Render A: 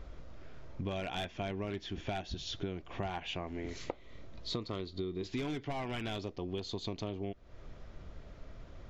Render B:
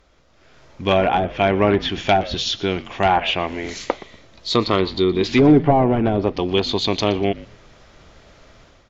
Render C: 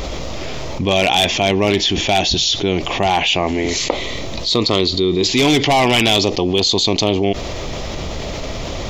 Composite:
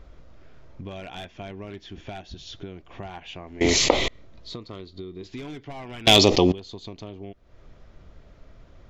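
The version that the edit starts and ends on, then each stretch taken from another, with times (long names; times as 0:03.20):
A
0:03.61–0:04.08: punch in from C
0:06.07–0:06.52: punch in from C
not used: B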